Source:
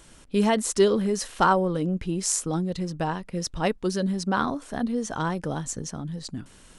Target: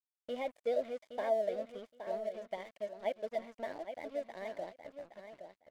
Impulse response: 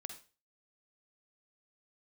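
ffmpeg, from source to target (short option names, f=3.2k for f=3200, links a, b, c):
-filter_complex "[0:a]deesser=1,asplit=3[a][b][c];[a]bandpass=f=530:t=q:w=8,volume=0dB[d];[b]bandpass=f=1.84k:t=q:w=8,volume=-6dB[e];[c]bandpass=f=2.48k:t=q:w=8,volume=-9dB[f];[d][e][f]amix=inputs=3:normalize=0,aeval=exprs='sgn(val(0))*max(abs(val(0))-0.00211,0)':c=same,asetrate=52479,aresample=44100,aecho=1:1:819|1638:0.355|0.0568"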